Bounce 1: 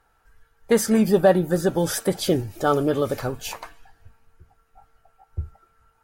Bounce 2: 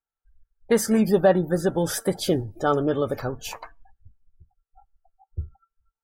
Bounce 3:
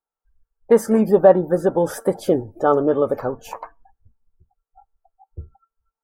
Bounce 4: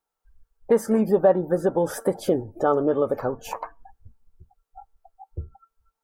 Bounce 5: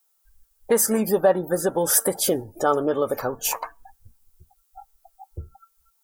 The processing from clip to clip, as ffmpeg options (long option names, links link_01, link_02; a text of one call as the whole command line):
ffmpeg -i in.wav -af "afftdn=noise_reduction=31:noise_floor=-42,volume=-1.5dB" out.wav
ffmpeg -i in.wav -af "equalizer=frequency=250:width_type=o:width=1:gain=6,equalizer=frequency=500:width_type=o:width=1:gain=9,equalizer=frequency=1000:width_type=o:width=1:gain=10,equalizer=frequency=4000:width_type=o:width=1:gain=-7,volume=-4.5dB" out.wav
ffmpeg -i in.wav -af "acompressor=threshold=-43dB:ratio=1.5,volume=6.5dB" out.wav
ffmpeg -i in.wav -af "crystalizer=i=9:c=0,volume=-2.5dB" out.wav